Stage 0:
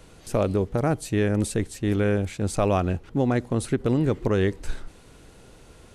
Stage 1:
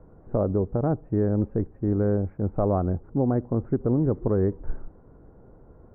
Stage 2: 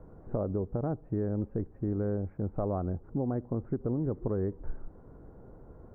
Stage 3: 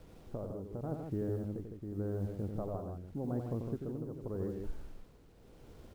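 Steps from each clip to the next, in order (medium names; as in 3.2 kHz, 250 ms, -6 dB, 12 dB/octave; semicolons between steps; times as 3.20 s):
Bessel low-pass 790 Hz, order 8
compression 2:1, threshold -34 dBFS, peak gain reduction 9 dB
word length cut 10-bit, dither none; tremolo 0.86 Hz, depth 60%; on a send: loudspeakers at several distances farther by 31 m -6 dB, 54 m -6 dB; on the sum: trim -5 dB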